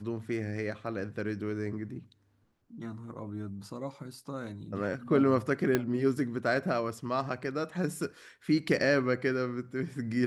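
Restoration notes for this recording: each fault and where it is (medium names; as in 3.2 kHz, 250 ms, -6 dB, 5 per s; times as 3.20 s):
5.75 s: pop -12 dBFS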